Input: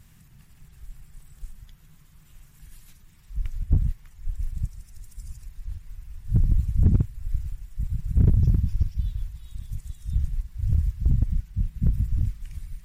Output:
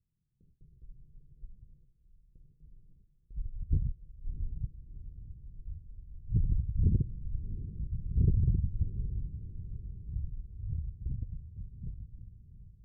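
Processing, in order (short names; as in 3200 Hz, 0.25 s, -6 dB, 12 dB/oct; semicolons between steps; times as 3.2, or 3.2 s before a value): ending faded out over 3.98 s; gate with hold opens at -41 dBFS; rippled Chebyshev low-pass 510 Hz, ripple 3 dB; on a send: diffused feedback echo 0.697 s, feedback 50%, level -13 dB; on the sum: gain -6.5 dB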